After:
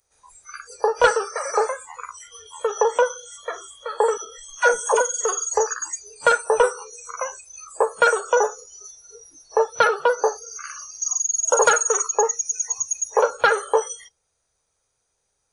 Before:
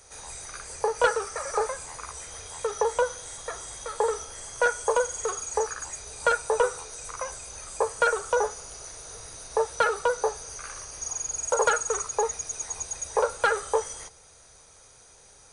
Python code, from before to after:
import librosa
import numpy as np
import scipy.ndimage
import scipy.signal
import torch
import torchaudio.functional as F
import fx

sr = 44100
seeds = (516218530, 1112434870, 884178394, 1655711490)

y = fx.noise_reduce_blind(x, sr, reduce_db=26)
y = fx.dynamic_eq(y, sr, hz=8400.0, q=0.77, threshold_db=-42.0, ratio=4.0, max_db=4)
y = fx.dispersion(y, sr, late='lows', ms=106.0, hz=410.0, at=(4.17, 5.01))
y = F.gain(torch.from_numpy(y), 6.0).numpy()